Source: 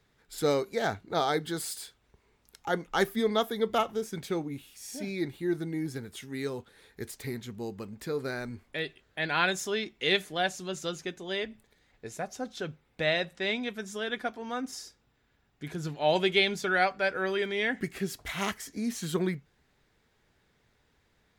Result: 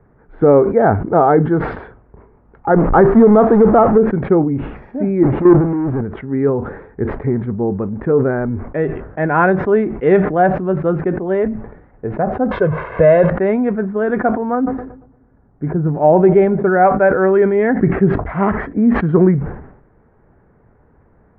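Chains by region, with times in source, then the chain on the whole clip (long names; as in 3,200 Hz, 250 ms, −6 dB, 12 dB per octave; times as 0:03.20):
0:02.76–0:03.98: converter with a step at zero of −27 dBFS + high shelf with overshoot 4,700 Hz +14 dB, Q 1.5
0:05.23–0:06.01: high-pass filter 100 Hz 6 dB per octave + power curve on the samples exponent 0.35 + output level in coarse steps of 12 dB
0:12.51–0:13.30: spike at every zero crossing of −23 dBFS + comb filter 1.9 ms, depth 78% + background raised ahead of every attack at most 40 dB per second
0:14.55–0:16.85: head-to-tape spacing loss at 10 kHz 29 dB + feedback echo with a low-pass in the loop 116 ms, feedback 59%, low-pass 1,300 Hz, level −20.5 dB
whole clip: Bessel low-pass filter 920 Hz, order 6; boost into a limiter +20 dB; level that may fall only so fast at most 77 dB per second; level −1 dB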